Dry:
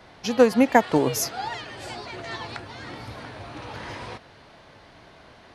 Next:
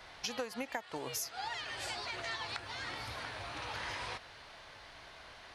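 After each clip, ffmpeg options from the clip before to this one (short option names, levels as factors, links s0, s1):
-af "equalizer=f=210:w=0.37:g=-14.5,acompressor=threshold=0.0141:ratio=12,volume=1.19"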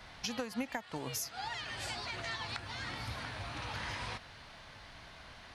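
-af "lowshelf=f=290:t=q:w=1.5:g=6"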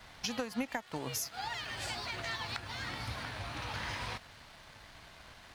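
-af "aeval=exprs='sgn(val(0))*max(abs(val(0))-0.00112,0)':c=same,volume=1.26"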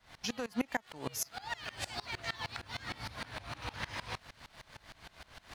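-af "areverse,acompressor=mode=upward:threshold=0.00501:ratio=2.5,areverse,aeval=exprs='val(0)*pow(10,-23*if(lt(mod(-6.5*n/s,1),2*abs(-6.5)/1000),1-mod(-6.5*n/s,1)/(2*abs(-6.5)/1000),(mod(-6.5*n/s,1)-2*abs(-6.5)/1000)/(1-2*abs(-6.5)/1000))/20)':c=same,volume=1.78"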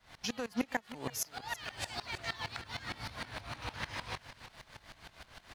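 -af "aecho=1:1:331:0.168"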